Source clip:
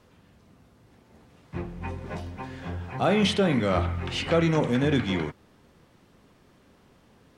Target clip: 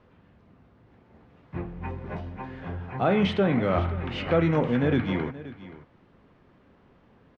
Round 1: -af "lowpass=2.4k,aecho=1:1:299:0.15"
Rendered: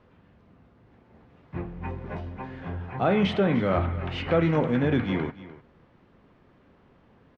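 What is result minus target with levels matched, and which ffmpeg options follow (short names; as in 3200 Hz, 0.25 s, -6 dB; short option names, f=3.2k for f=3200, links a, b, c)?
echo 0.228 s early
-af "lowpass=2.4k,aecho=1:1:527:0.15"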